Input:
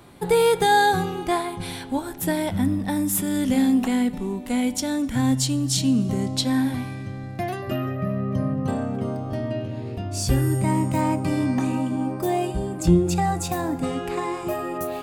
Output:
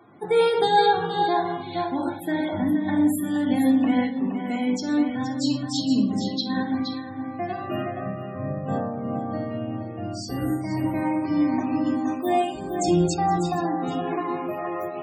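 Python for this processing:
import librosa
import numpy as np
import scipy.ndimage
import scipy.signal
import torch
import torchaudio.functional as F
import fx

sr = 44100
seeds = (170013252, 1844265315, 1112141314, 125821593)

y = fx.notch(x, sr, hz=390.0, q=12.0)
y = y + 10.0 ** (-7.0 / 20.0) * np.pad(y, (int(470 * sr / 1000.0), 0))[:len(y)]
y = fx.room_shoebox(y, sr, seeds[0], volume_m3=2100.0, walls='furnished', distance_m=3.4)
y = fx.dynamic_eq(y, sr, hz=4200.0, q=0.95, threshold_db=-39.0, ratio=4.0, max_db=4)
y = scipy.signal.sosfilt(scipy.signal.butter(2, 210.0, 'highpass', fs=sr, output='sos'), y)
y = fx.high_shelf(y, sr, hz=2800.0, db=fx.steps((0.0, -7.5), (11.84, 3.0), (13.13, -7.0)))
y = fx.spec_topn(y, sr, count=64)
y = fx.am_noise(y, sr, seeds[1], hz=5.7, depth_pct=65)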